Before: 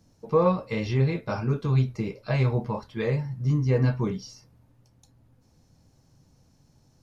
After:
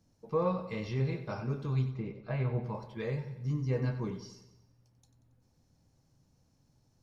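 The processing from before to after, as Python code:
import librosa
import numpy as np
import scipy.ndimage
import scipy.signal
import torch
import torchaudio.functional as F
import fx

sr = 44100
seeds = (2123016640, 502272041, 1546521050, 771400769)

y = fx.lowpass(x, sr, hz=2400.0, slope=12, at=(1.9, 2.63))
y = fx.echo_feedback(y, sr, ms=92, feedback_pct=52, wet_db=-11.5)
y = y * librosa.db_to_amplitude(-9.0)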